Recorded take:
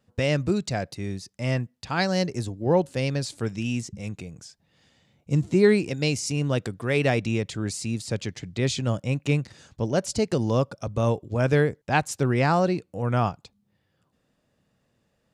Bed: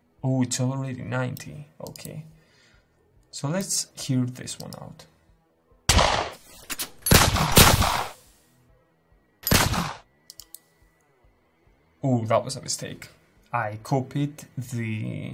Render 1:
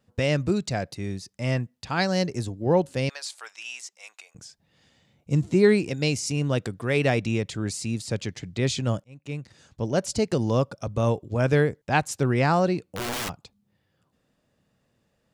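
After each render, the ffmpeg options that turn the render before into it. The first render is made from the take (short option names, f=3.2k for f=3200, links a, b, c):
-filter_complex "[0:a]asettb=1/sr,asplit=3[a][b][c];[a]atrim=end=3.094[d];[b]atrim=start=3.09:end=4.35,asetpts=PTS-STARTPTS,afade=t=in:d=0.004:c=qsin,afade=t=out:st=1.256:d=0.004:c=qsin,highpass=f=820:w=0.5412,highpass=f=820:w=1.3066[e];[c]atrim=start=4.346[f];[d][e]acrossfade=d=0.004:c1=hsin:c2=qsin[g];[g][f]acrossfade=d=0.004:c1=qsin:c2=hsin,asplit=3[h][i][j];[h]afade=t=out:st=12.87:d=0.02[k];[i]aeval=exprs='(mod(17.8*val(0)+1,2)-1)/17.8':c=same,afade=t=in:st=12.87:d=0.02,afade=t=out:st=13.28:d=0.02[l];[j]afade=t=in:st=13.28:d=0.02[m];[k][l][m]amix=inputs=3:normalize=0,asplit=2[n][o];[n]atrim=end=9.04,asetpts=PTS-STARTPTS,afade=t=out:st=9.036:d=0.004:c=hsin[p];[o]atrim=start=9.04,asetpts=PTS-STARTPTS,afade=t=in:d=0.95[q];[p][q]concat=n=2:v=0:a=1"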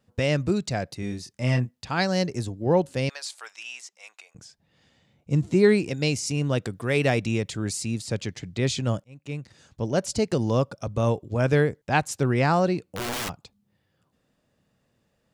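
-filter_complex "[0:a]asettb=1/sr,asplit=3[a][b][c];[a]atrim=end=1.004[d];[b]atrim=start=1:end=1.71,asetpts=PTS-STARTPTS,afade=t=in:d=0.004:c=qsin,afade=t=out:st=0.706:d=0.004:c=qsin,asplit=2[e][f];[f]adelay=24,volume=-5dB[g];[e][g]amix=inputs=2:normalize=0,atrim=end_sample=31311[h];[c]atrim=start=1.706[i];[d][h]acrossfade=d=0.004:c1=hsin:c2=qsin[j];[j][i]acrossfade=d=0.004:c1=qsin:c2=hsin,asettb=1/sr,asplit=3[k][l][m];[k]atrim=end=3.634[n];[l]atrim=start=3.63:end=5.44,asetpts=PTS-STARTPTS,afade=t=in:d=0.004:c=qsin,afade=t=out:st=1.806:d=0.004:c=qsin,highshelf=f=5k:g=-5[o];[m]atrim=start=5.436[p];[n][o]acrossfade=d=0.004:c1=hsin:c2=qsin[q];[q][p]acrossfade=d=0.004:c1=qsin:c2=hsin,asettb=1/sr,asplit=3[r][s][t];[r]atrim=end=6.724[u];[s]atrim=start=6.72:end=7.83,asetpts=PTS-STARTPTS,afade=t=in:d=0.004:c=qsin,afade=t=out:st=1.106:d=0.004:c=qsin,highshelf=f=8.4k:g=6[v];[t]atrim=start=7.826[w];[u][v]acrossfade=d=0.004:c1=hsin:c2=qsin[x];[x][w]acrossfade=d=0.004:c1=qsin:c2=hsin"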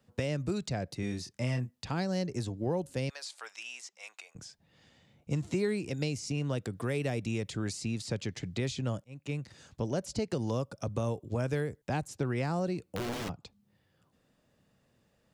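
-filter_complex "[0:a]acrossover=split=85|570|6800[a][b][c][d];[a]acompressor=threshold=-48dB:ratio=4[e];[b]acompressor=threshold=-32dB:ratio=4[f];[c]acompressor=threshold=-41dB:ratio=4[g];[d]acompressor=threshold=-54dB:ratio=4[h];[e][f][g][h]amix=inputs=4:normalize=0"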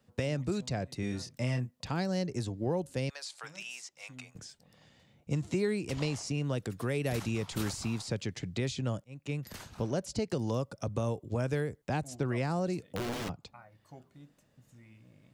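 -filter_complex "[1:a]volume=-27.5dB[a];[0:a][a]amix=inputs=2:normalize=0"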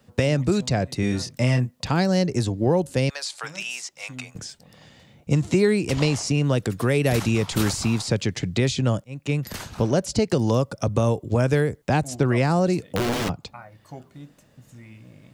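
-af "volume=11.5dB"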